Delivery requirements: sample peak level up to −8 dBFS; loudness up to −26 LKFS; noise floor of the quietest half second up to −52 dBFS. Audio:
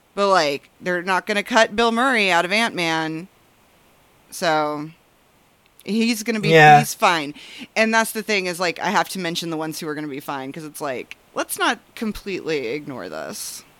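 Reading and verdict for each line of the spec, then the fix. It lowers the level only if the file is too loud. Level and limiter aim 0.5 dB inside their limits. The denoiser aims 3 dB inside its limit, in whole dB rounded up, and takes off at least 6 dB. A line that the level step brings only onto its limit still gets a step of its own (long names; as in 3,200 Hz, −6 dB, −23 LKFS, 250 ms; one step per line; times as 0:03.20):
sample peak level −1.5 dBFS: out of spec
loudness −19.5 LKFS: out of spec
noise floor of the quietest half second −57 dBFS: in spec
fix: level −7 dB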